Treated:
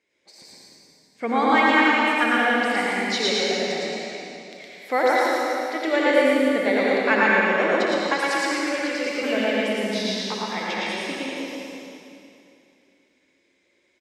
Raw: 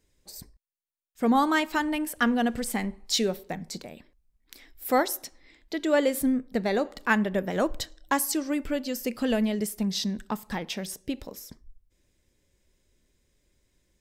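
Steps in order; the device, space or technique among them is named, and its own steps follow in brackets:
station announcement (band-pass filter 340–4,500 Hz; parametric band 2,200 Hz +11.5 dB 0.29 octaves; loudspeakers that aren't time-aligned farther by 21 metres −10 dB, 39 metres −2 dB; convolution reverb RT60 2.7 s, pre-delay 77 ms, DRR −4.5 dB)
0:08.14–0:09.23: thirty-one-band graphic EQ 250 Hz −10 dB, 630 Hz −4 dB, 1,000 Hz −5 dB, 5,000 Hz +4 dB, 12,500 Hz −9 dB

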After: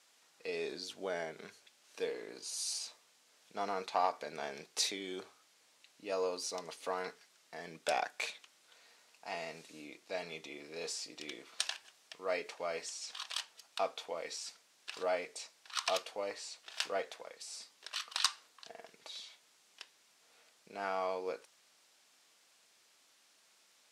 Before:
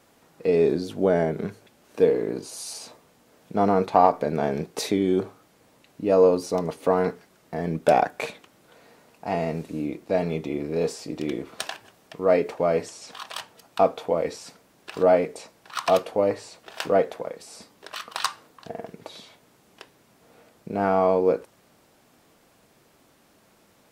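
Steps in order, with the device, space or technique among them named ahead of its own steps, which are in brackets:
piezo pickup straight into a mixer (low-pass filter 5,700 Hz 12 dB per octave; first difference)
level +4.5 dB

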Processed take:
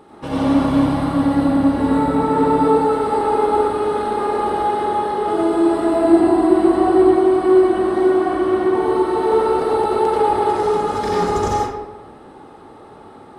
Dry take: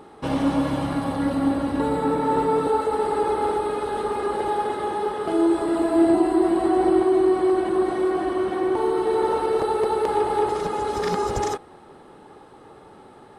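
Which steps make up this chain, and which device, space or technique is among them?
bathroom (convolution reverb RT60 1.0 s, pre-delay 79 ms, DRR −5 dB)
level −1.5 dB

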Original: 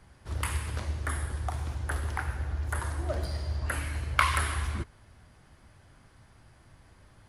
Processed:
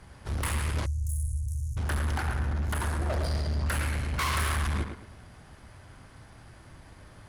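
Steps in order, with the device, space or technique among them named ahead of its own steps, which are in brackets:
rockabilly slapback (tube saturation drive 35 dB, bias 0.55; tape delay 110 ms, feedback 34%, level −4.5 dB, low-pass 2,800 Hz)
0:00.86–0:01.77: Chebyshev band-stop filter 120–6,500 Hz, order 4
level +8.5 dB

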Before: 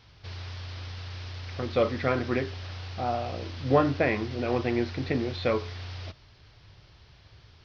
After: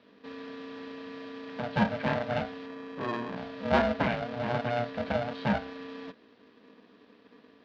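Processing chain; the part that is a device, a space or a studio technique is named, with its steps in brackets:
0:02.66–0:03.36: low-pass filter 1,800 Hz
ring modulator pedal into a guitar cabinet (ring modulator with a square carrier 360 Hz; loudspeaker in its box 110–4,100 Hz, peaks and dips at 200 Hz +9 dB, 620 Hz +9 dB, 1,600 Hz +5 dB)
low-shelf EQ 280 Hz +5.5 dB
level −7 dB

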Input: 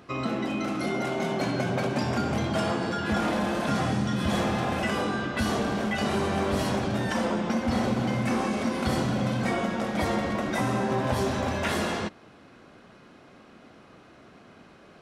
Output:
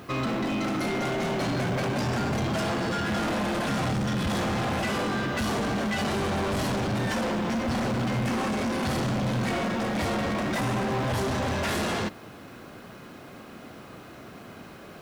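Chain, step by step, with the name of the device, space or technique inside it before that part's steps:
open-reel tape (soft clipping −32.5 dBFS, distortion −7 dB; parametric band 110 Hz +3 dB 0.87 octaves; white noise bed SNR 34 dB)
level +7 dB

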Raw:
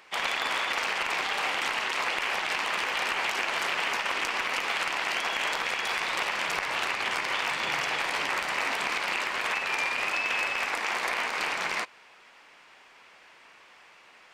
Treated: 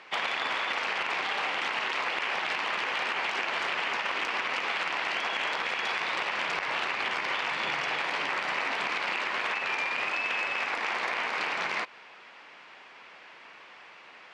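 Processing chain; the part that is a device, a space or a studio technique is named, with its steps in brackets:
AM radio (band-pass filter 110–4,400 Hz; downward compressor, threshold −31 dBFS, peak gain reduction 6.5 dB; soft clipping −21.5 dBFS, distortion −27 dB)
level +4.5 dB

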